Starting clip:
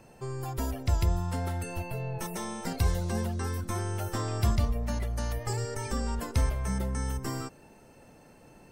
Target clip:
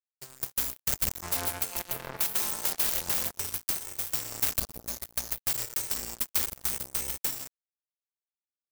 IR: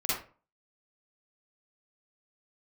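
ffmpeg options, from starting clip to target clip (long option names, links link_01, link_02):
-filter_complex "[0:a]aexciter=amount=9:drive=1.4:freq=4100,aeval=exprs='(mod(5.01*val(0)+1,2)-1)/5.01':channel_layout=same,asplit=3[link_01][link_02][link_03];[link_01]afade=type=out:start_time=1.22:duration=0.02[link_04];[link_02]equalizer=frequency=920:width_type=o:width=2.8:gain=13.5,afade=type=in:start_time=1.22:duration=0.02,afade=type=out:start_time=3.3:duration=0.02[link_05];[link_03]afade=type=in:start_time=3.3:duration=0.02[link_06];[link_04][link_05][link_06]amix=inputs=3:normalize=0,asplit=5[link_07][link_08][link_09][link_10][link_11];[link_08]adelay=128,afreqshift=-60,volume=-18dB[link_12];[link_09]adelay=256,afreqshift=-120,volume=-25.1dB[link_13];[link_10]adelay=384,afreqshift=-180,volume=-32.3dB[link_14];[link_11]adelay=512,afreqshift=-240,volume=-39.4dB[link_15];[link_07][link_12][link_13][link_14][link_15]amix=inputs=5:normalize=0,aeval=exprs='(mod(6.68*val(0)+1,2)-1)/6.68':channel_layout=same,acompressor=threshold=-42dB:ratio=2,bandreject=frequency=50:width_type=h:width=6,bandreject=frequency=100:width_type=h:width=6,bandreject=frequency=150:width_type=h:width=6,bandreject=frequency=200:width_type=h:width=6,bandreject=frequency=250:width_type=h:width=6,bandreject=frequency=300:width_type=h:width=6,acrusher=bits=4:mix=0:aa=0.5,highshelf=frequency=12000:gain=9,volume=3.5dB"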